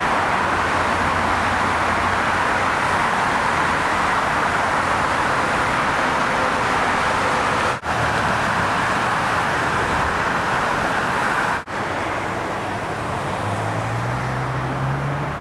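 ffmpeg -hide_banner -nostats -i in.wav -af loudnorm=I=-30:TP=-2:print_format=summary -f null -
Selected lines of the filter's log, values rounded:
Input Integrated:    -20.1 LUFS
Input True Peak:      -6.0 dBTP
Input LRA:             4.9 LU
Input Threshold:     -30.1 LUFS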